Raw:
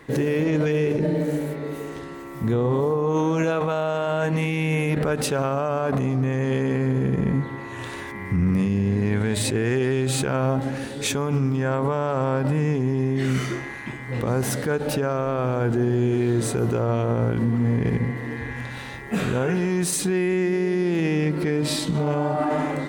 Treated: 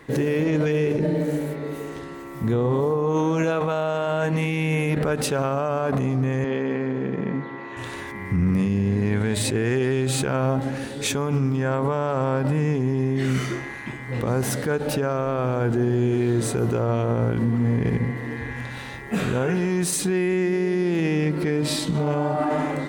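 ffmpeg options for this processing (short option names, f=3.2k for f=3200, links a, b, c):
-filter_complex "[0:a]asettb=1/sr,asplit=3[a][b][c];[a]atrim=end=6.444[d];[b]atrim=start=6.44:end=7.77,asetpts=PTS-STARTPTS,afade=t=in:d=0.004:c=qsin,afade=t=out:st=1.326:d=0.004:c=qsin,highpass=220,lowpass=3.8k[e];[c]atrim=start=7.766[f];[d][e]acrossfade=d=0.004:c1=hsin:c2=qsin[g];[g][f]acrossfade=d=0.004:c1=qsin:c2=hsin"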